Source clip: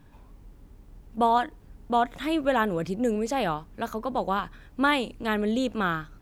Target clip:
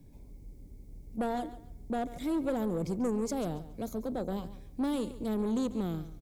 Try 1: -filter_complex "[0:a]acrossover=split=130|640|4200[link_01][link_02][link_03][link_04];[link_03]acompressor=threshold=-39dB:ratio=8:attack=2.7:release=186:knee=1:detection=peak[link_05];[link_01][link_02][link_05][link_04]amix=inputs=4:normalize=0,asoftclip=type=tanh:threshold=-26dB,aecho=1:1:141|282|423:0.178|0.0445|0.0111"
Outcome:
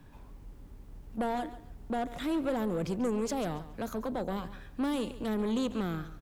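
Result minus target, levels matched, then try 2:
2,000 Hz band +5.5 dB
-filter_complex "[0:a]acrossover=split=130|640|4200[link_01][link_02][link_03][link_04];[link_03]acompressor=threshold=-39dB:ratio=8:attack=2.7:release=186:knee=1:detection=peak,bandpass=frequency=2200:width_type=q:width=18:csg=0[link_05];[link_01][link_02][link_05][link_04]amix=inputs=4:normalize=0,asoftclip=type=tanh:threshold=-26dB,aecho=1:1:141|282|423:0.178|0.0445|0.0111"

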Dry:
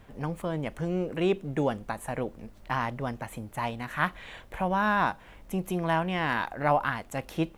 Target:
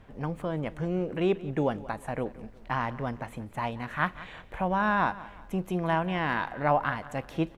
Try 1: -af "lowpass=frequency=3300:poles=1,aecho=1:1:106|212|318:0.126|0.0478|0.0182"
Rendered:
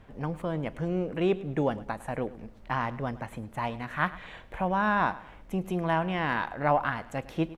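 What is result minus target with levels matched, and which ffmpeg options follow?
echo 73 ms early
-af "lowpass=frequency=3300:poles=1,aecho=1:1:179|358|537:0.126|0.0478|0.0182"

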